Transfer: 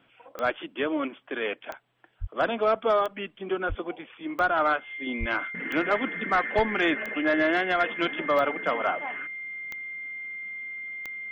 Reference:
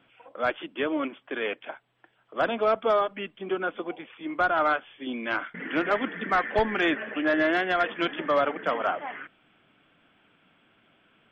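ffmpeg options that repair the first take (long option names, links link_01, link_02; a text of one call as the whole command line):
ffmpeg -i in.wav -filter_complex "[0:a]adeclick=threshold=4,bandreject=frequency=2100:width=30,asplit=3[link_01][link_02][link_03];[link_01]afade=type=out:start_time=2.2:duration=0.02[link_04];[link_02]highpass=frequency=140:width=0.5412,highpass=frequency=140:width=1.3066,afade=type=in:start_time=2.2:duration=0.02,afade=type=out:start_time=2.32:duration=0.02[link_05];[link_03]afade=type=in:start_time=2.32:duration=0.02[link_06];[link_04][link_05][link_06]amix=inputs=3:normalize=0,asplit=3[link_07][link_08][link_09];[link_07]afade=type=out:start_time=3.68:duration=0.02[link_10];[link_08]highpass=frequency=140:width=0.5412,highpass=frequency=140:width=1.3066,afade=type=in:start_time=3.68:duration=0.02,afade=type=out:start_time=3.8:duration=0.02[link_11];[link_09]afade=type=in:start_time=3.8:duration=0.02[link_12];[link_10][link_11][link_12]amix=inputs=3:normalize=0,asplit=3[link_13][link_14][link_15];[link_13]afade=type=out:start_time=5.19:duration=0.02[link_16];[link_14]highpass=frequency=140:width=0.5412,highpass=frequency=140:width=1.3066,afade=type=in:start_time=5.19:duration=0.02,afade=type=out:start_time=5.31:duration=0.02[link_17];[link_15]afade=type=in:start_time=5.31:duration=0.02[link_18];[link_16][link_17][link_18]amix=inputs=3:normalize=0" out.wav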